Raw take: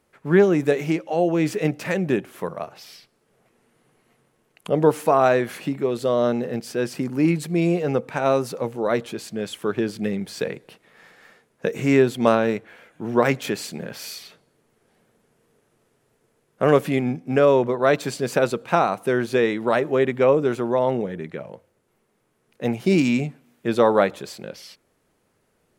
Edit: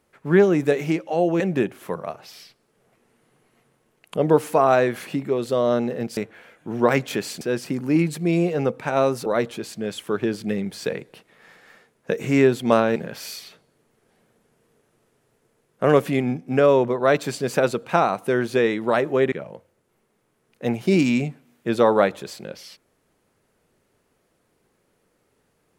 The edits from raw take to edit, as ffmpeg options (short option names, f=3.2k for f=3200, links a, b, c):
-filter_complex "[0:a]asplit=7[a][b][c][d][e][f][g];[a]atrim=end=1.402[h];[b]atrim=start=1.928:end=6.702[i];[c]atrim=start=12.508:end=13.752[j];[d]atrim=start=6.698:end=8.552[k];[e]atrim=start=8.808:end=12.512[l];[f]atrim=start=13.748:end=20.112[m];[g]atrim=start=21.308[n];[h][i]acrossfade=d=0.004:c1=hsin:c2=hsin[o];[o][j]acrossfade=d=0.004:c1=hsin:c2=hsin[p];[p][k]acrossfade=d=0.004:c1=hsin:c2=hsin[q];[q][l]acrossfade=d=0.004:c1=hsin:c2=hsin[r];[r][m]acrossfade=d=0.004:c1=hsin:c2=hsin[s];[s][n]acrossfade=d=0.004:c1=hsin:c2=hsin"